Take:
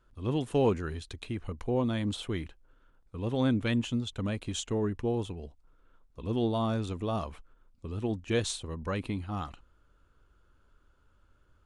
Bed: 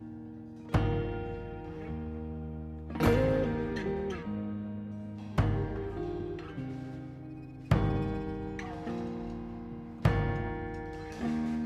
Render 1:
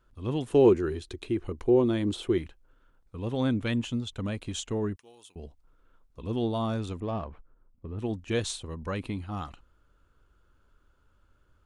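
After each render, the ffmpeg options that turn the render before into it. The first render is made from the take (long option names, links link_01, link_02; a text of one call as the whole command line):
ffmpeg -i in.wav -filter_complex "[0:a]asettb=1/sr,asplit=3[link_01][link_02][link_03];[link_01]atrim=end=0.524[link_04];[link_02]atrim=start=0.52:end=2.38,asetpts=PTS-STARTPTS,afade=type=in:duration=0.004:curve=qsin,afade=type=out:start_time=1.856:duration=0.004:curve=qsin,equalizer=frequency=360:width_type=o:width=0.47:gain=14[link_05];[link_03]atrim=start=2.376[link_06];[link_04][link_05]acrossfade=duration=0.004:curve1=hsin:curve2=qsin[link_07];[link_07][link_06]acrossfade=duration=0.004:curve1=qsin:curve2=hsin,asettb=1/sr,asplit=3[link_08][link_09][link_10];[link_08]atrim=end=4.964[link_11];[link_09]atrim=start=4.96:end=5.36,asetpts=PTS-STARTPTS,afade=type=in:duration=0.004:curve=qsin,afade=type=out:start_time=0.396:duration=0.004:curve=qsin,aderivative[link_12];[link_10]atrim=start=5.356[link_13];[link_11][link_12]acrossfade=duration=0.004:curve1=hsin:curve2=qsin[link_14];[link_14][link_13]acrossfade=duration=0.004:curve1=qsin:curve2=hsin,asettb=1/sr,asplit=3[link_15][link_16][link_17];[link_15]atrim=end=7.004[link_18];[link_16]atrim=start=7:end=7.99,asetpts=PTS-STARTPTS,afade=type=in:duration=0.004:curve=qsin,afade=type=out:start_time=0.986:duration=0.004:curve=qsin,adynamicsmooth=sensitivity=2:basefreq=1400[link_19];[link_17]atrim=start=7.986[link_20];[link_18][link_19]acrossfade=duration=0.004:curve1=hsin:curve2=qsin[link_21];[link_21][link_20]acrossfade=duration=0.004:curve1=qsin:curve2=hsin" out.wav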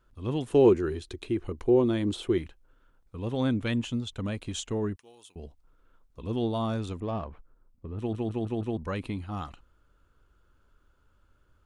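ffmpeg -i in.wav -filter_complex "[0:a]asplit=6[link_01][link_02][link_03][link_04][link_05][link_06];[link_01]atrim=end=8.132[link_07];[link_02]atrim=start=7.968:end=8.132[link_08];[link_03]atrim=start=7.968:end=8.132[link_09];[link_04]atrim=start=7.968:end=8.132[link_10];[link_05]atrim=start=7.968:end=8.132[link_11];[link_06]atrim=start=8.768[link_12];[link_07][link_08]acrossfade=duration=0.004:curve1=hsin:curve2=hsin[link_13];[link_13][link_09]acrossfade=duration=0.004:curve1=hsin:curve2=hsin[link_14];[link_14][link_10]acrossfade=duration=0.004:curve1=hsin:curve2=hsin[link_15];[link_15][link_11]acrossfade=duration=0.004:curve1=hsin:curve2=hsin[link_16];[link_16][link_12]acrossfade=duration=0.004:curve1=hsin:curve2=hsin" out.wav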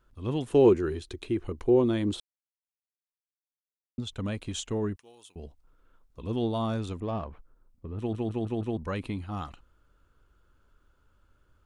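ffmpeg -i in.wav -filter_complex "[0:a]asplit=3[link_01][link_02][link_03];[link_01]atrim=end=2.2,asetpts=PTS-STARTPTS,afade=type=out:start_time=2.196:duration=0.004:curve=hsin[link_04];[link_02]atrim=start=2.2:end=3.98,asetpts=PTS-STARTPTS,volume=0[link_05];[link_03]atrim=start=3.98,asetpts=PTS-STARTPTS,afade=type=in:duration=0.004:curve=hsin[link_06];[link_04][link_05][link_06]concat=n=3:v=0:a=1" out.wav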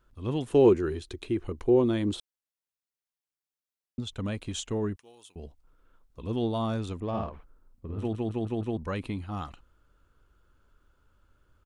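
ffmpeg -i in.wav -filter_complex "[0:a]asplit=3[link_01][link_02][link_03];[link_01]afade=type=out:start_time=7.13:duration=0.02[link_04];[link_02]asplit=2[link_05][link_06];[link_06]adelay=50,volume=-3dB[link_07];[link_05][link_07]amix=inputs=2:normalize=0,afade=type=in:start_time=7.13:duration=0.02,afade=type=out:start_time=8.07:duration=0.02[link_08];[link_03]afade=type=in:start_time=8.07:duration=0.02[link_09];[link_04][link_08][link_09]amix=inputs=3:normalize=0" out.wav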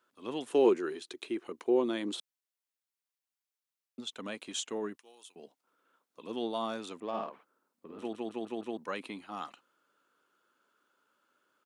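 ffmpeg -i in.wav -af "highpass=frequency=210:width=0.5412,highpass=frequency=210:width=1.3066,lowshelf=frequency=420:gain=-9.5" out.wav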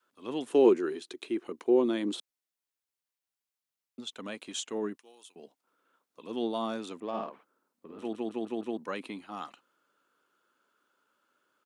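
ffmpeg -i in.wav -af "adynamicequalizer=threshold=0.01:dfrequency=260:dqfactor=0.83:tfrequency=260:tqfactor=0.83:attack=5:release=100:ratio=0.375:range=2.5:mode=boostabove:tftype=bell" out.wav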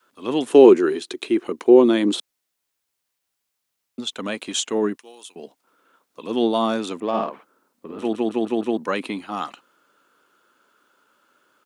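ffmpeg -i in.wav -af "volume=12dB,alimiter=limit=-1dB:level=0:latency=1" out.wav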